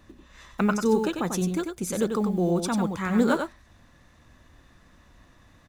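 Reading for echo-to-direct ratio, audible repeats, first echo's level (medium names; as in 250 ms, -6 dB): -6.0 dB, 1, -6.0 dB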